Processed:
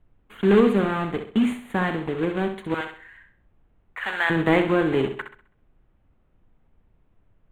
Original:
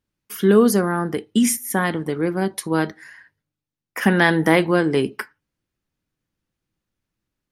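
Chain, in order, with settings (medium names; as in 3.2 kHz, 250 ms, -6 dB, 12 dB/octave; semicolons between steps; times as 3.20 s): block-companded coder 3-bit; 2.74–4.30 s: high-pass 1 kHz 12 dB/octave; added noise brown -57 dBFS; Butterworth band-stop 5.3 kHz, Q 1.2; distance through air 180 m; flutter echo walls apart 11.2 m, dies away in 0.45 s; trim -3 dB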